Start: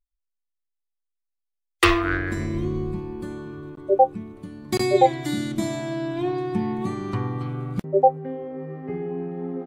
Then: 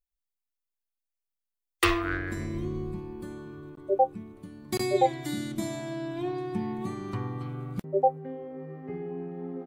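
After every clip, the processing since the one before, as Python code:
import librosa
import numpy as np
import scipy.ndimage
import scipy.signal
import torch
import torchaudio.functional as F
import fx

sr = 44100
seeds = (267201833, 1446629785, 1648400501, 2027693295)

y = fx.high_shelf(x, sr, hz=11000.0, db=9.5)
y = y * librosa.db_to_amplitude(-6.5)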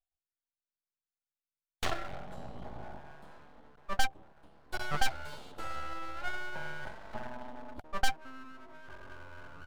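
y = fx.curve_eq(x, sr, hz=(120.0, 260.0, 430.0, 720.0, 1900.0, 3000.0, 5800.0), db=(0, -18, -13, 15, -29, 1, -12))
y = fx.tube_stage(y, sr, drive_db=19.0, bias=0.8)
y = np.abs(y)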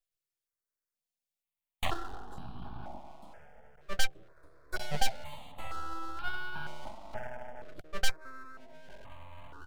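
y = fx.phaser_held(x, sr, hz=2.1, low_hz=240.0, high_hz=2000.0)
y = y * librosa.db_to_amplitude(3.0)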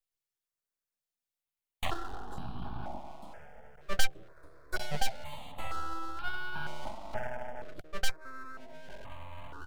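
y = fx.rider(x, sr, range_db=3, speed_s=0.5)
y = 10.0 ** (-13.0 / 20.0) * np.tanh(y / 10.0 ** (-13.0 / 20.0))
y = y * librosa.db_to_amplitude(1.0)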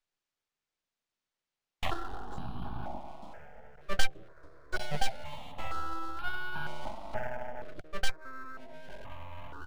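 y = np.interp(np.arange(len(x)), np.arange(len(x))[::3], x[::3])
y = y * librosa.db_to_amplitude(1.0)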